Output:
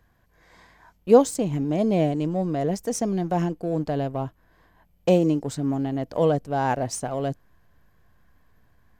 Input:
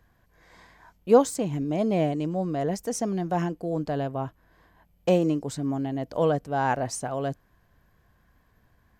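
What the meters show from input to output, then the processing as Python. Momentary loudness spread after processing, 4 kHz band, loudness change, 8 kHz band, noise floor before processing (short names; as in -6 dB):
11 LU, +1.5 dB, +2.5 dB, +2.0 dB, -65 dBFS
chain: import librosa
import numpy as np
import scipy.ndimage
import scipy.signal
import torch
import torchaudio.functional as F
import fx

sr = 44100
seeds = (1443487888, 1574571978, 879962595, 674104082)

p1 = fx.backlash(x, sr, play_db=-30.0)
p2 = x + (p1 * 10.0 ** (-6.0 / 20.0))
y = fx.dynamic_eq(p2, sr, hz=1400.0, q=0.9, threshold_db=-34.0, ratio=4.0, max_db=-5)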